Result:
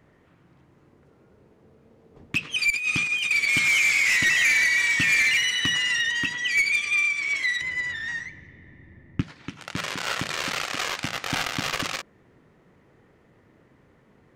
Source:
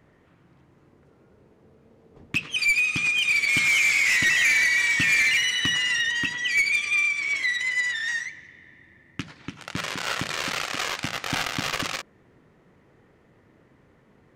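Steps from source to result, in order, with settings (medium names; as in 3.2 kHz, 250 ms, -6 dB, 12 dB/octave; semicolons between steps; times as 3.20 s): 2.70–3.31 s: compressor with a negative ratio -25 dBFS, ratio -0.5; 7.61–9.23 s: tilt EQ -3.5 dB/octave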